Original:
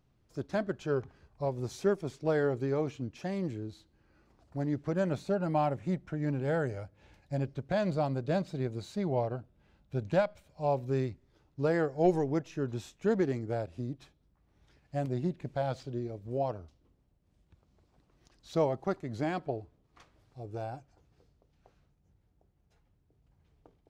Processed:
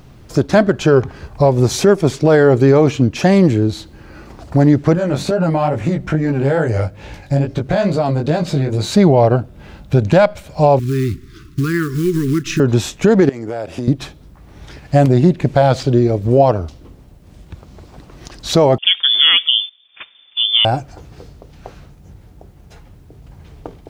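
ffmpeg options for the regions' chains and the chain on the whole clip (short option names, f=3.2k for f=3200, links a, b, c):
-filter_complex "[0:a]asettb=1/sr,asplit=3[a][b][c];[a]atrim=end=4.954[d];[b]atrim=start=4.95:end=8.92,asetpts=PTS-STARTPTS,afade=t=in:d=0.004:c=qsin,afade=t=out:st=3.966:d=0.004:c=qsin,acompressor=threshold=-35dB:ratio=6:attack=3.2:release=140:knee=1:detection=peak,flanger=delay=17.5:depth=4.5:speed=2.3[e];[c]atrim=start=8.916[f];[d][e]acrossfade=d=0.004:c1=hsin:c2=qsin[g];[g][f]acrossfade=d=0.004:c1=qsin:c2=hsin,asettb=1/sr,asplit=3[h][i][j];[h]atrim=end=10.794[k];[i]atrim=start=10.79:end=12.6,asetpts=PTS-STARTPTS,afade=t=in:d=0.004:c=qsin,afade=t=out:st=1.806:d=0.004:c=qsin,acompressor=threshold=-41dB:ratio=3:attack=3.2:release=140:knee=1:detection=peak,acrusher=bits=6:mode=log:mix=0:aa=0.000001,asuperstop=centerf=660:order=12:qfactor=0.93[l];[j]atrim=start=12.596[m];[k][l]acrossfade=d=0.004:c1=hsin:c2=qsin[n];[n][m]acrossfade=d=0.004:c1=qsin:c2=hsin,asettb=1/sr,asplit=3[o][p][q];[o]atrim=end=13.294[r];[p]atrim=start=13.29:end=13.88,asetpts=PTS-STARTPTS,afade=t=in:d=0.004:c=qsin,afade=t=out:st=0.586:d=0.004:c=qsin,highpass=f=410:p=1,acompressor=threshold=-46dB:ratio=20:attack=3.2:release=140:knee=1:detection=peak,bandreject=f=4.1k:w=9.1[s];[q]atrim=start=13.876[t];[r][s]acrossfade=d=0.004:c1=hsin:c2=qsin[u];[u][t]acrossfade=d=0.004:c1=qsin:c2=hsin,asettb=1/sr,asplit=3[v][w][x];[v]atrim=end=18.784[y];[w]atrim=start=18.78:end=20.65,asetpts=PTS-STARTPTS,afade=t=in:d=0.004:c=qsin,afade=t=out:st=1.866:d=0.004:c=qsin,agate=range=-12dB:threshold=-57dB:ratio=16:release=100:detection=peak,lowpass=f=3.1k:t=q:w=0.5098,lowpass=f=3.1k:t=q:w=0.6013,lowpass=f=3.1k:t=q:w=0.9,lowpass=f=3.1k:t=q:w=2.563,afreqshift=-3600[z];[x]atrim=start=20.646[aa];[y][z]acrossfade=d=0.004:c1=hsin:c2=qsin[ab];[ab][aa]acrossfade=d=0.004:c1=qsin:c2=hsin,acompressor=threshold=-45dB:ratio=1.5,alimiter=level_in=29.5dB:limit=-1dB:release=50:level=0:latency=1,volume=-1dB"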